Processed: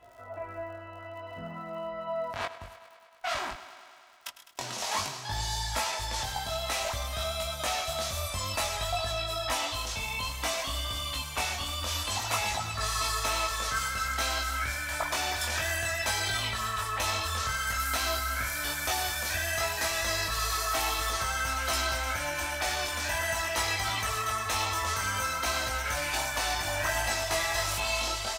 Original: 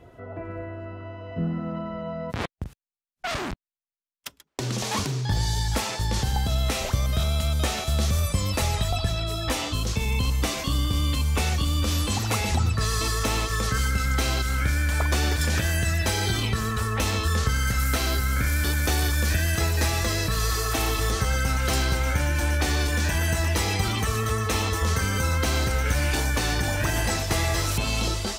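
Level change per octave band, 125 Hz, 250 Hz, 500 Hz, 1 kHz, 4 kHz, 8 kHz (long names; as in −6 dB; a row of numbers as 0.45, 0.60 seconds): −15.5, −15.5, −4.0, −0.5, −2.0, −2.5 decibels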